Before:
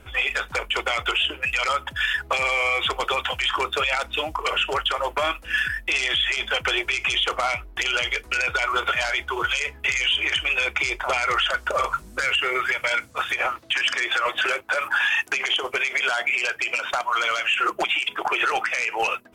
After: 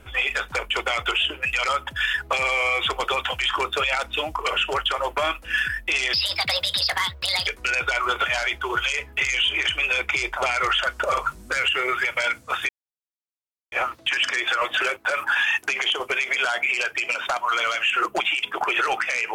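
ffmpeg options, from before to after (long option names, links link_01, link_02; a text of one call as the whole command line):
ffmpeg -i in.wav -filter_complex "[0:a]asplit=4[link_01][link_02][link_03][link_04];[link_01]atrim=end=6.134[link_05];[link_02]atrim=start=6.13:end=8.14,asetpts=PTS-STARTPTS,asetrate=66150,aresample=44100[link_06];[link_03]atrim=start=8.136:end=13.36,asetpts=PTS-STARTPTS,afade=type=out:start_time=5.22:duration=0.004:curve=hsin,apad=pad_dur=1.03[link_07];[link_04]atrim=start=13.36,asetpts=PTS-STARTPTS,afade=type=in:duration=0.004:curve=hsin[link_08];[link_05][link_06]acrossfade=duration=0.004:curve1=hsin:curve2=hsin[link_09];[link_07][link_08]concat=n=2:v=0:a=1[link_10];[link_09][link_10]acrossfade=duration=0.004:curve1=hsin:curve2=hsin" out.wav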